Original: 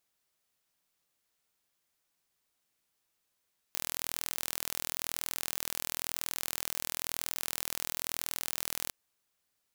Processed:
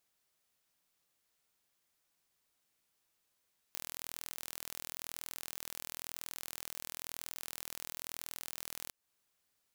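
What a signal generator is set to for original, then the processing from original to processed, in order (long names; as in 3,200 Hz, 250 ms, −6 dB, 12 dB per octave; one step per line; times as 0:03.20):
impulse train 41 per second, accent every 0, −7 dBFS 5.15 s
downward compressor 2 to 1, threshold −42 dBFS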